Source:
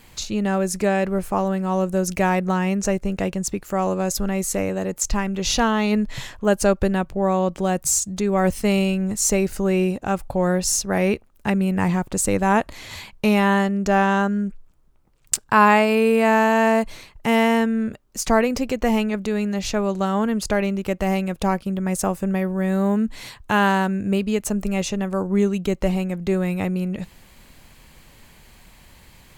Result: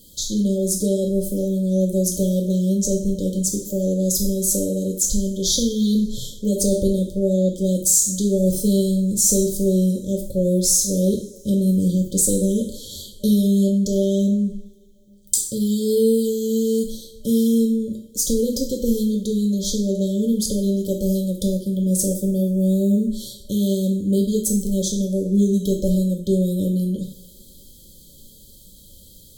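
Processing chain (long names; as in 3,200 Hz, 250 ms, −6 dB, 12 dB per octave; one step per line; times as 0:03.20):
high-shelf EQ 6,600 Hz +11 dB
coupled-rooms reverb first 0.5 s, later 3.1 s, from −26 dB, DRR 0.5 dB
in parallel at −1 dB: brickwall limiter −6.5 dBFS, peak gain reduction 11.5 dB
on the sum: brick-wall band-stop 600–3,100 Hz
level −8 dB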